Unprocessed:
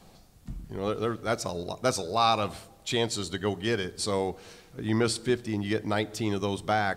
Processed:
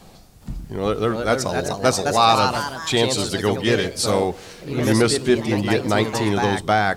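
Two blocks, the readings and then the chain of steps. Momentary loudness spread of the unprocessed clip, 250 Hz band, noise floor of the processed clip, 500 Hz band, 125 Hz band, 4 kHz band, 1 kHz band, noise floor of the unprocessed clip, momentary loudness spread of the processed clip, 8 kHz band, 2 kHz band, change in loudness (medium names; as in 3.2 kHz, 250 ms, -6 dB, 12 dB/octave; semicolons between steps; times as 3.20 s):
11 LU, +9.0 dB, -46 dBFS, +9.0 dB, +9.0 dB, +9.0 dB, +9.5 dB, -55 dBFS, 9 LU, +9.5 dB, +9.5 dB, +9.0 dB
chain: ever faster or slower copies 412 ms, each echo +2 st, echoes 3, each echo -6 dB; trim +8 dB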